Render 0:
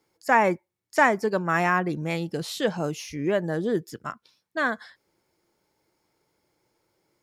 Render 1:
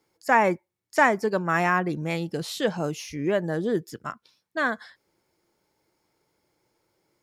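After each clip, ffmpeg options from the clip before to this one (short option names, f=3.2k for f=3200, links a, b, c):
-af anull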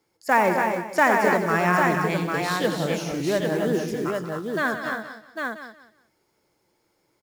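-filter_complex "[0:a]asplit=2[a][b];[b]aecho=0:1:181|362|543:0.282|0.0676|0.0162[c];[a][c]amix=inputs=2:normalize=0,acrusher=bits=6:mode=log:mix=0:aa=0.000001,asplit=2[d][e];[e]aecho=0:1:85|262|285|801:0.335|0.398|0.422|0.596[f];[d][f]amix=inputs=2:normalize=0"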